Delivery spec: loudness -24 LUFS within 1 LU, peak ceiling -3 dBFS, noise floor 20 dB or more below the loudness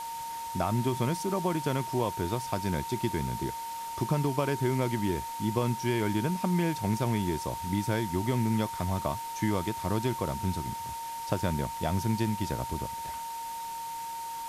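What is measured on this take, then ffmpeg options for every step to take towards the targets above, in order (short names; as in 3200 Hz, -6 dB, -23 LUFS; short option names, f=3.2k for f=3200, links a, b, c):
steady tone 920 Hz; tone level -35 dBFS; noise floor -38 dBFS; noise floor target -51 dBFS; loudness -31.0 LUFS; peak -12.5 dBFS; loudness target -24.0 LUFS
-> -af "bandreject=f=920:w=30"
-af "afftdn=nr=13:nf=-38"
-af "volume=7dB"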